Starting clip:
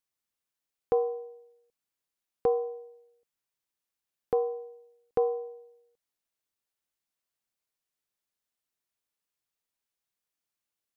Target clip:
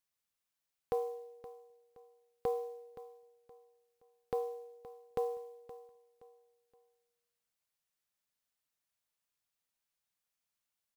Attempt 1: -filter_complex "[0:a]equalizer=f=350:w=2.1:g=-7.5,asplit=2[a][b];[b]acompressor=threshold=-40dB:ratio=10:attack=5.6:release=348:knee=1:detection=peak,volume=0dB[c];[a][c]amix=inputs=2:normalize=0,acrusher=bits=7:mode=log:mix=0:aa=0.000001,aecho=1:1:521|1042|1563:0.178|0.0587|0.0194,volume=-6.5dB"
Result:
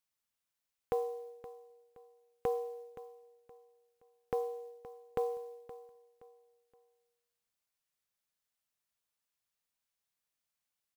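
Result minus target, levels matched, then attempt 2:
compressor: peak gain reduction -10.5 dB
-filter_complex "[0:a]equalizer=f=350:w=2.1:g=-7.5,asplit=2[a][b];[b]acompressor=threshold=-51.5dB:ratio=10:attack=5.6:release=348:knee=1:detection=peak,volume=0dB[c];[a][c]amix=inputs=2:normalize=0,acrusher=bits=7:mode=log:mix=0:aa=0.000001,aecho=1:1:521|1042|1563:0.178|0.0587|0.0194,volume=-6.5dB"

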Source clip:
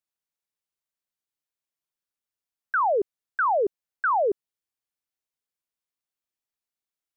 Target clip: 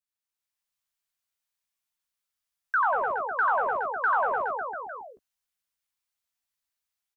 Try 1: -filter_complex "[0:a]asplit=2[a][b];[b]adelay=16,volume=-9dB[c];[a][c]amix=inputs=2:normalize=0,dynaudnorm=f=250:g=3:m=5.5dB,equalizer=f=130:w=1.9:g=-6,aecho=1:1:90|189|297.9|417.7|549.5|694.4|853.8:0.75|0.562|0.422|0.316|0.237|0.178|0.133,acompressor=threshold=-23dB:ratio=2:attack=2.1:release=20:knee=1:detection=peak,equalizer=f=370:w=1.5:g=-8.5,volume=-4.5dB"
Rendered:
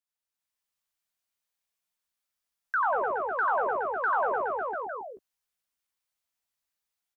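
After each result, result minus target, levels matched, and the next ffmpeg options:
compressor: peak gain reduction +3.5 dB; 500 Hz band +3.5 dB
-filter_complex "[0:a]asplit=2[a][b];[b]adelay=16,volume=-9dB[c];[a][c]amix=inputs=2:normalize=0,dynaudnorm=f=250:g=3:m=5.5dB,equalizer=f=130:w=1.9:g=-6,aecho=1:1:90|189|297.9|417.7|549.5|694.4|853.8:0.75|0.562|0.422|0.316|0.237|0.178|0.133,acompressor=threshold=-15.5dB:ratio=2:attack=2.1:release=20:knee=1:detection=peak,equalizer=f=370:w=1.5:g=-8.5,volume=-4.5dB"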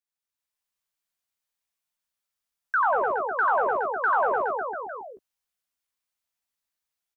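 500 Hz band +3.0 dB
-filter_complex "[0:a]asplit=2[a][b];[b]adelay=16,volume=-9dB[c];[a][c]amix=inputs=2:normalize=0,dynaudnorm=f=250:g=3:m=5.5dB,equalizer=f=130:w=1.9:g=-6,aecho=1:1:90|189|297.9|417.7|549.5|694.4|853.8:0.75|0.562|0.422|0.316|0.237|0.178|0.133,acompressor=threshold=-15.5dB:ratio=2:attack=2.1:release=20:knee=1:detection=peak,equalizer=f=370:w=1.5:g=-19,volume=-4.5dB"

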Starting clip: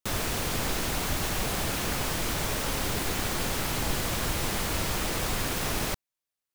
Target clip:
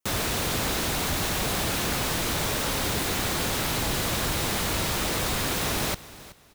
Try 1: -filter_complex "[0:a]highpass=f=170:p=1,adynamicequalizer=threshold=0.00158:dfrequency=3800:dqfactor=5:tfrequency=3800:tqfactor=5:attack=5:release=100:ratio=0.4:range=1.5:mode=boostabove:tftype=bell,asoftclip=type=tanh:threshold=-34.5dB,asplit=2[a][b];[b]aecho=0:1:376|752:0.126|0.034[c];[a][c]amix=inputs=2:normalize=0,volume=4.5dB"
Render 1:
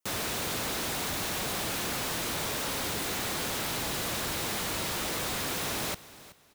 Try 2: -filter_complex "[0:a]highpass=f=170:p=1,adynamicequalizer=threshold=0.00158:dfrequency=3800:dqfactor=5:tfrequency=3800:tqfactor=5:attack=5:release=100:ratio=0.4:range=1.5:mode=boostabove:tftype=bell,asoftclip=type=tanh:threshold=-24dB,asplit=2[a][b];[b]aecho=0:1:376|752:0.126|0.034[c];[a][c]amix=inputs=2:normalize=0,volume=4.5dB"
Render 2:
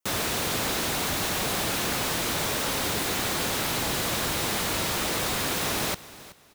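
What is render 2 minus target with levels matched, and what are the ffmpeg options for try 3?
125 Hz band -4.0 dB
-filter_complex "[0:a]highpass=f=46:p=1,adynamicequalizer=threshold=0.00158:dfrequency=3800:dqfactor=5:tfrequency=3800:tqfactor=5:attack=5:release=100:ratio=0.4:range=1.5:mode=boostabove:tftype=bell,asoftclip=type=tanh:threshold=-24dB,asplit=2[a][b];[b]aecho=0:1:376|752:0.126|0.034[c];[a][c]amix=inputs=2:normalize=0,volume=4.5dB"

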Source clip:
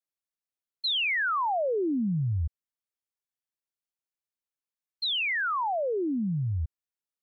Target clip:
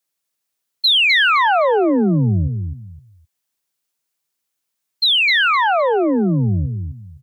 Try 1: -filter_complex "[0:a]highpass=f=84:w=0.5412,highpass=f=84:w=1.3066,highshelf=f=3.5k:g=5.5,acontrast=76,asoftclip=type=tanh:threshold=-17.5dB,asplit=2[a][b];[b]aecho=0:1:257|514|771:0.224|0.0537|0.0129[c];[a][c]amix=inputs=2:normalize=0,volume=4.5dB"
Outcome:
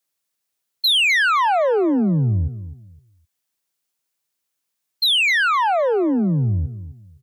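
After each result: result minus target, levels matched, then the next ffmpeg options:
soft clip: distortion +17 dB; echo-to-direct -7 dB
-filter_complex "[0:a]highpass=f=84:w=0.5412,highpass=f=84:w=1.3066,highshelf=f=3.5k:g=5.5,acontrast=76,asoftclip=type=tanh:threshold=-7.5dB,asplit=2[a][b];[b]aecho=0:1:257|514|771:0.224|0.0537|0.0129[c];[a][c]amix=inputs=2:normalize=0,volume=4.5dB"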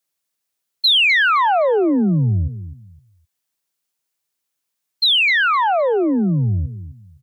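echo-to-direct -7 dB
-filter_complex "[0:a]highpass=f=84:w=0.5412,highpass=f=84:w=1.3066,highshelf=f=3.5k:g=5.5,acontrast=76,asoftclip=type=tanh:threshold=-7.5dB,asplit=2[a][b];[b]aecho=0:1:257|514|771:0.501|0.12|0.0289[c];[a][c]amix=inputs=2:normalize=0,volume=4.5dB"

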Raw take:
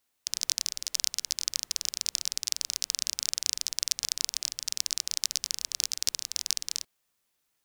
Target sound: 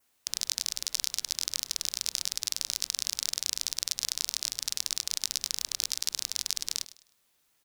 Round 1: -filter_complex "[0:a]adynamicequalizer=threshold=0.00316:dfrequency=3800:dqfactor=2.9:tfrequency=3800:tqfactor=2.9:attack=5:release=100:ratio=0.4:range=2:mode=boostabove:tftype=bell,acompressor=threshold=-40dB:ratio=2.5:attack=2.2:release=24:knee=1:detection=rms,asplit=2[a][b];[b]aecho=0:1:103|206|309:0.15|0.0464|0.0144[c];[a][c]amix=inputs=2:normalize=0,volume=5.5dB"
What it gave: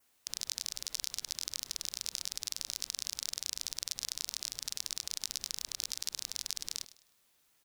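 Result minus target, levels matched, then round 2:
compressor: peak gain reduction +6.5 dB
-filter_complex "[0:a]adynamicequalizer=threshold=0.00316:dfrequency=3800:dqfactor=2.9:tfrequency=3800:tqfactor=2.9:attack=5:release=100:ratio=0.4:range=2:mode=boostabove:tftype=bell,acompressor=threshold=-29dB:ratio=2.5:attack=2.2:release=24:knee=1:detection=rms,asplit=2[a][b];[b]aecho=0:1:103|206|309:0.15|0.0464|0.0144[c];[a][c]amix=inputs=2:normalize=0,volume=5.5dB"

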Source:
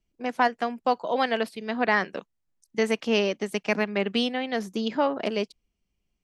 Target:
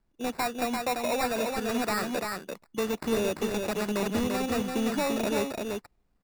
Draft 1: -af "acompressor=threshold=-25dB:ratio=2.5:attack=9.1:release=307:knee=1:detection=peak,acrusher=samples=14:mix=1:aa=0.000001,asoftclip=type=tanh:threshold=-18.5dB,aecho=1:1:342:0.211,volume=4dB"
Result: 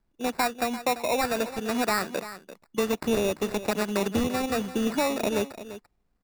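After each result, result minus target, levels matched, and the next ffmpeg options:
echo-to-direct -9.5 dB; soft clip: distortion -9 dB
-af "acompressor=threshold=-25dB:ratio=2.5:attack=9.1:release=307:knee=1:detection=peak,acrusher=samples=14:mix=1:aa=0.000001,asoftclip=type=tanh:threshold=-18.5dB,aecho=1:1:342:0.631,volume=4dB"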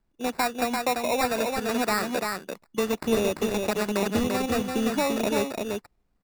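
soft clip: distortion -9 dB
-af "acompressor=threshold=-25dB:ratio=2.5:attack=9.1:release=307:knee=1:detection=peak,acrusher=samples=14:mix=1:aa=0.000001,asoftclip=type=tanh:threshold=-27dB,aecho=1:1:342:0.631,volume=4dB"

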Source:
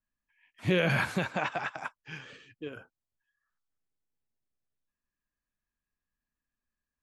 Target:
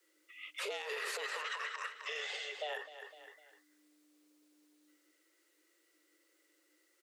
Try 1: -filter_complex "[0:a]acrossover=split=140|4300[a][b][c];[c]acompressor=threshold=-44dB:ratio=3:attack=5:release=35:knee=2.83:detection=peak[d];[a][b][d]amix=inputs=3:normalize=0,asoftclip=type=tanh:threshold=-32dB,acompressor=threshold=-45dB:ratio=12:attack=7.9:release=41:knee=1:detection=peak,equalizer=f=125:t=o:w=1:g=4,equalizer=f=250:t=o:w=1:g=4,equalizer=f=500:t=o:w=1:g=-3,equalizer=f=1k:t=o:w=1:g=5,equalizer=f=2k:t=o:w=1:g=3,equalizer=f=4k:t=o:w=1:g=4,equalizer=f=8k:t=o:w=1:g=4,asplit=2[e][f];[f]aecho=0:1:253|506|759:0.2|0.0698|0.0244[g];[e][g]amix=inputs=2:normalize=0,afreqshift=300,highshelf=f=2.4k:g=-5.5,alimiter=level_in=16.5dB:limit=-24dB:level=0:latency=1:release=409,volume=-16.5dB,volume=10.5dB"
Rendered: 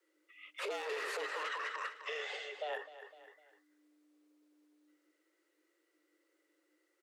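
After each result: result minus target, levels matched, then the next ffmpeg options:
soft clip: distortion +9 dB; 4000 Hz band -4.0 dB
-filter_complex "[0:a]acrossover=split=140|4300[a][b][c];[c]acompressor=threshold=-44dB:ratio=3:attack=5:release=35:knee=2.83:detection=peak[d];[a][b][d]amix=inputs=3:normalize=0,asoftclip=type=tanh:threshold=-22dB,acompressor=threshold=-45dB:ratio=12:attack=7.9:release=41:knee=1:detection=peak,equalizer=f=125:t=o:w=1:g=4,equalizer=f=250:t=o:w=1:g=4,equalizer=f=500:t=o:w=1:g=-3,equalizer=f=1k:t=o:w=1:g=5,equalizer=f=2k:t=o:w=1:g=3,equalizer=f=4k:t=o:w=1:g=4,equalizer=f=8k:t=o:w=1:g=4,asplit=2[e][f];[f]aecho=0:1:253|506|759:0.2|0.0698|0.0244[g];[e][g]amix=inputs=2:normalize=0,afreqshift=300,highshelf=f=2.4k:g=-5.5,alimiter=level_in=16.5dB:limit=-24dB:level=0:latency=1:release=409,volume=-16.5dB,volume=10.5dB"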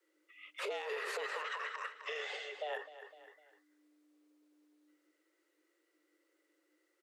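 4000 Hz band -3.5 dB
-filter_complex "[0:a]acrossover=split=140|4300[a][b][c];[c]acompressor=threshold=-44dB:ratio=3:attack=5:release=35:knee=2.83:detection=peak[d];[a][b][d]amix=inputs=3:normalize=0,asoftclip=type=tanh:threshold=-22dB,acompressor=threshold=-45dB:ratio=12:attack=7.9:release=41:knee=1:detection=peak,equalizer=f=125:t=o:w=1:g=4,equalizer=f=250:t=o:w=1:g=4,equalizer=f=500:t=o:w=1:g=-3,equalizer=f=1k:t=o:w=1:g=5,equalizer=f=2k:t=o:w=1:g=3,equalizer=f=4k:t=o:w=1:g=4,equalizer=f=8k:t=o:w=1:g=4,asplit=2[e][f];[f]aecho=0:1:253|506|759:0.2|0.0698|0.0244[g];[e][g]amix=inputs=2:normalize=0,afreqshift=300,highshelf=f=2.4k:g=6,alimiter=level_in=16.5dB:limit=-24dB:level=0:latency=1:release=409,volume=-16.5dB,volume=10.5dB"

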